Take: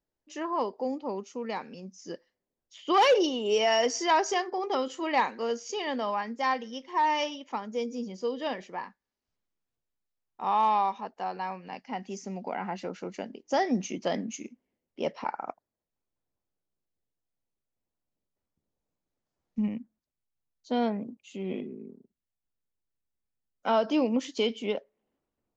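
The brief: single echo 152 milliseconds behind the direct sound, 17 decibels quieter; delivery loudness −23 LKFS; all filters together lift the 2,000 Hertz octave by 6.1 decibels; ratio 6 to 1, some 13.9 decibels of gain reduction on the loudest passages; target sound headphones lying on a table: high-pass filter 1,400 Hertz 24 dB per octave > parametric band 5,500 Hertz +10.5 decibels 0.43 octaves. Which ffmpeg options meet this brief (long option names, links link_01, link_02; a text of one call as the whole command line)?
ffmpeg -i in.wav -af "equalizer=frequency=2000:width_type=o:gain=7.5,acompressor=threshold=-32dB:ratio=6,highpass=frequency=1400:width=0.5412,highpass=frequency=1400:width=1.3066,equalizer=frequency=5500:width_type=o:width=0.43:gain=10.5,aecho=1:1:152:0.141,volume=17.5dB" out.wav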